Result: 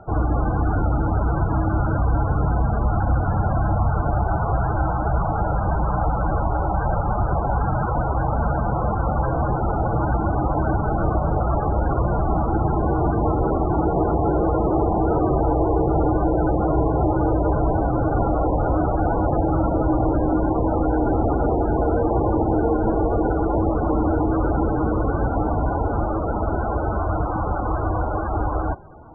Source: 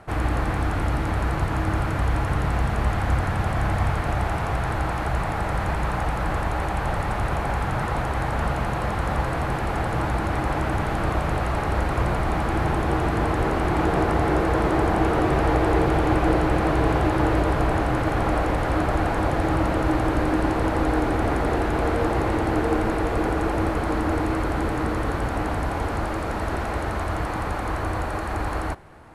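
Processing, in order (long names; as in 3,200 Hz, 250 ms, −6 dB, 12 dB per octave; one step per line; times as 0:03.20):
elliptic low-pass filter 1,600 Hz, stop band 80 dB
brickwall limiter −16 dBFS, peak gain reduction 8 dB
spectral peaks only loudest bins 32
level +5.5 dB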